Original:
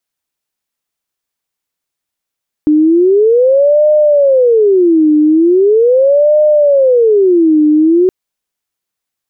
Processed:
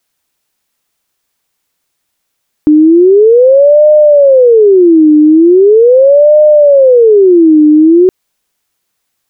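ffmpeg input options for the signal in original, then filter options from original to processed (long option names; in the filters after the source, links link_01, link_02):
-f lavfi -i "aevalsrc='0.562*sin(2*PI*(454*t-152/(2*PI*0.4)*sin(2*PI*0.4*t)))':duration=5.42:sample_rate=44100"
-af "alimiter=level_in=12.5dB:limit=-1dB:release=50:level=0:latency=1"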